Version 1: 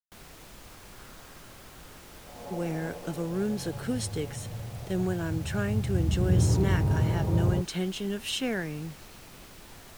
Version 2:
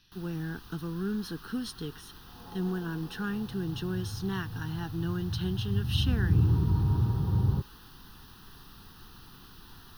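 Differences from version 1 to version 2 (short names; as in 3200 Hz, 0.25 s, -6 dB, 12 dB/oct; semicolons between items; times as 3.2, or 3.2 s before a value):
speech: entry -2.35 s; master: add fixed phaser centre 2200 Hz, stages 6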